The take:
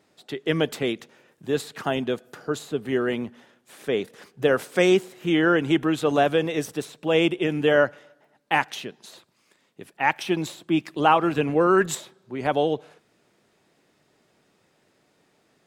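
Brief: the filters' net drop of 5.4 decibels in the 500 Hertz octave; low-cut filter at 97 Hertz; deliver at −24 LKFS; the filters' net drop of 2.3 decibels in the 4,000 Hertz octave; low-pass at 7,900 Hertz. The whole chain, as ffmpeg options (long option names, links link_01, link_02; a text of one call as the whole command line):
ffmpeg -i in.wav -af "highpass=97,lowpass=7900,equalizer=frequency=500:width_type=o:gain=-7,equalizer=frequency=4000:width_type=o:gain=-3,volume=3dB" out.wav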